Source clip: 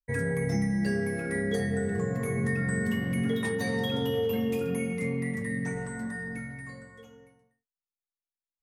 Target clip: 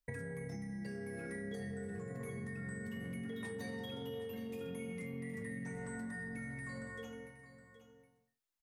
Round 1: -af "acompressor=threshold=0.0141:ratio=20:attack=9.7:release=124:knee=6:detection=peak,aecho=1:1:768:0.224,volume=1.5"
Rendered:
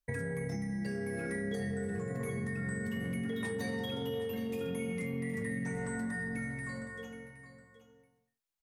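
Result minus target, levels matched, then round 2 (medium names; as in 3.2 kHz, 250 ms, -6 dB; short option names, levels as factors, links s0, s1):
compression: peak gain reduction -7 dB
-af "acompressor=threshold=0.00596:ratio=20:attack=9.7:release=124:knee=6:detection=peak,aecho=1:1:768:0.224,volume=1.5"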